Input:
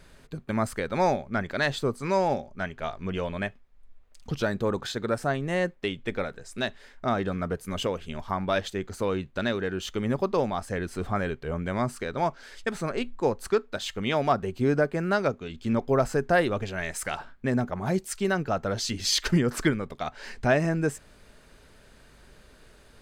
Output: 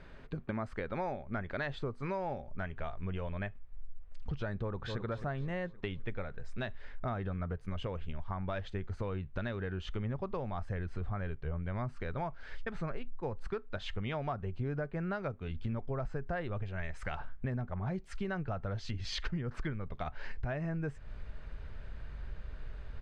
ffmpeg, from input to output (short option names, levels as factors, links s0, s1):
-filter_complex "[0:a]asplit=2[s0][s1];[s1]afade=t=in:st=4.56:d=0.01,afade=t=out:st=5.02:d=0.01,aecho=0:1:260|520|780|1040|1300:0.298538|0.134342|0.060454|0.0272043|0.0122419[s2];[s0][s2]amix=inputs=2:normalize=0,lowpass=2600,asubboost=boost=5.5:cutoff=110,acompressor=threshold=0.0178:ratio=6,volume=1.12"